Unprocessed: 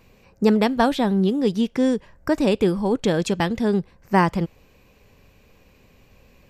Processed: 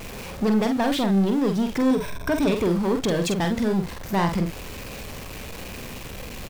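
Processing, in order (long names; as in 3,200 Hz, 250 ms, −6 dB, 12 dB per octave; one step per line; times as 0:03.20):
converter with a step at zero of −32 dBFS
0:01.90–0:02.53: EQ curve with evenly spaced ripples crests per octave 1.6, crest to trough 13 dB
in parallel at −2.5 dB: brickwall limiter −12.5 dBFS, peak gain reduction 8.5 dB
on the sum: soft clipping −13 dBFS, distortion −12 dB
double-tracking delay 46 ms −6 dB
level −4.5 dB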